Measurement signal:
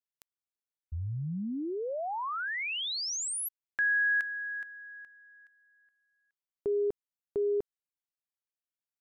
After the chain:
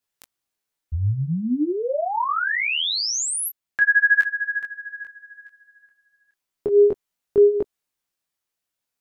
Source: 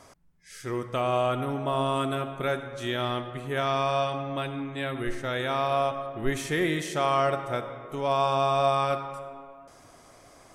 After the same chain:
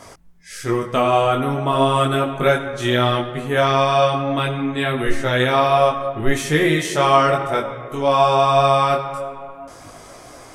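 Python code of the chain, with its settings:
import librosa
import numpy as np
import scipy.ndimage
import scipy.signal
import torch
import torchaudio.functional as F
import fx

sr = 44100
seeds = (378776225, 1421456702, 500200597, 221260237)

p1 = fx.rider(x, sr, range_db=4, speed_s=2.0)
p2 = x + (p1 * 10.0 ** (2.5 / 20.0))
p3 = fx.detune_double(p2, sr, cents=14)
y = p3 * 10.0 ** (6.0 / 20.0)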